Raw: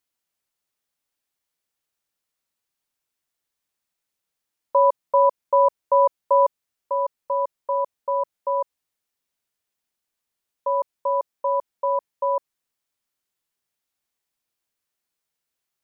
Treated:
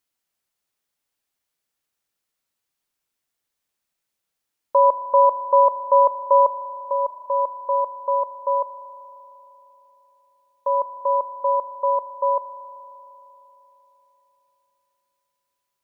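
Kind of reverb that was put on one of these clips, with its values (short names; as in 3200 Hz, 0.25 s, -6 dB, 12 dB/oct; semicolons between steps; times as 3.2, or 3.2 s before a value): spring tank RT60 3.8 s, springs 38 ms, chirp 70 ms, DRR 11.5 dB; gain +1.5 dB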